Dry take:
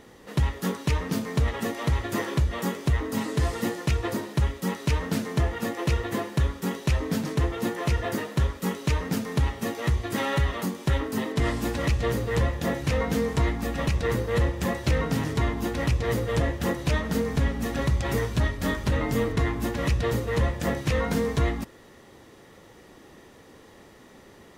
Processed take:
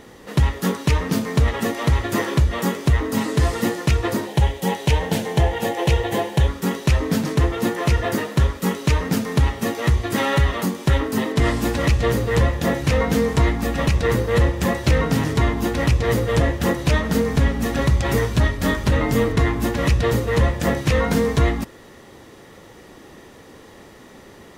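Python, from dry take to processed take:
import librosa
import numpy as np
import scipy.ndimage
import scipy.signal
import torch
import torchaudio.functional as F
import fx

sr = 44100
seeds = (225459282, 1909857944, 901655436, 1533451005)

y = fx.graphic_eq_31(x, sr, hz=(250, 500, 800, 1250, 3150, 5000), db=(-9, 4, 9, -10, 5, -3), at=(4.27, 6.48))
y = y * librosa.db_to_amplitude(6.5)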